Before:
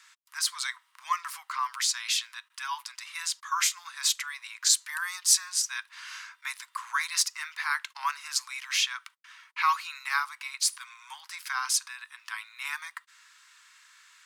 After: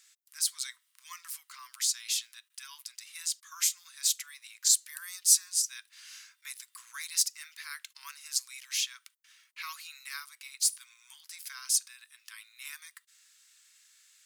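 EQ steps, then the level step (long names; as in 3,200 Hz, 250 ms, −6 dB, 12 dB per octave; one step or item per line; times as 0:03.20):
high-pass filter 1,300 Hz 12 dB per octave
first difference
0.0 dB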